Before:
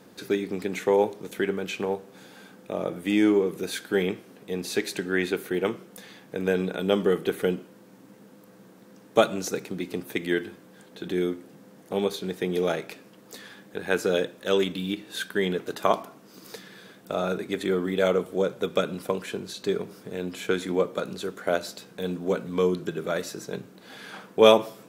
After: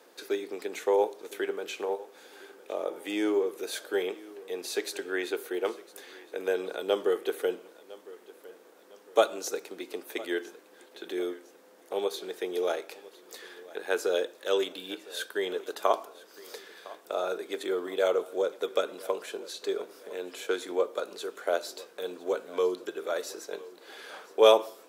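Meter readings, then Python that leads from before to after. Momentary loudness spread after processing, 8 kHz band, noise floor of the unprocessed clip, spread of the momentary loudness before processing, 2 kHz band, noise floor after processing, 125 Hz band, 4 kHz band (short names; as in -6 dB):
19 LU, -2.0 dB, -52 dBFS, 16 LU, -5.0 dB, -56 dBFS, under -25 dB, -3.5 dB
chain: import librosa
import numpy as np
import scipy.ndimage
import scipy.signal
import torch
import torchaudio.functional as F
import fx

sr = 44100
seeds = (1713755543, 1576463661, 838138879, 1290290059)

y = scipy.signal.sosfilt(scipy.signal.butter(4, 370.0, 'highpass', fs=sr, output='sos'), x)
y = fx.dynamic_eq(y, sr, hz=2100.0, q=1.5, threshold_db=-45.0, ratio=4.0, max_db=-5)
y = fx.echo_feedback(y, sr, ms=1007, feedback_pct=41, wet_db=-20.0)
y = y * librosa.db_to_amplitude(-2.0)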